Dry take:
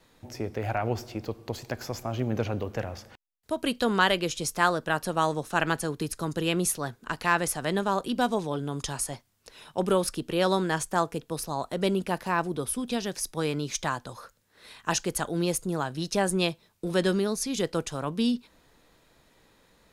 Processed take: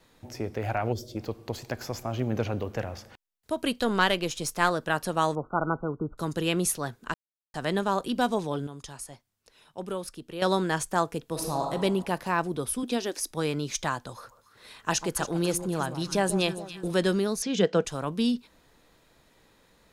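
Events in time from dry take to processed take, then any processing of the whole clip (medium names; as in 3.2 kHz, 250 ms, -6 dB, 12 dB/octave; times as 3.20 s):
0.92–1.17 s: time-frequency box 640–3100 Hz -17 dB
3.72–4.71 s: partial rectifier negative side -3 dB
5.35–6.18 s: brick-wall FIR low-pass 1.5 kHz
7.14–7.54 s: mute
8.67–10.42 s: gain -9.5 dB
11.29–11.72 s: reverb throw, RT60 1.3 s, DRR 1 dB
12.83–13.31 s: resonant low shelf 210 Hz -9.5 dB, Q 3
14.13–16.88 s: echo whose repeats swap between lows and highs 141 ms, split 1.1 kHz, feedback 70%, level -11 dB
17.42–17.85 s: cabinet simulation 140–6500 Hz, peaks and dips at 190 Hz +10 dB, 460 Hz +8 dB, 680 Hz +6 dB, 1.6 kHz +7 dB, 3 kHz +5 dB, 4.6 kHz -4 dB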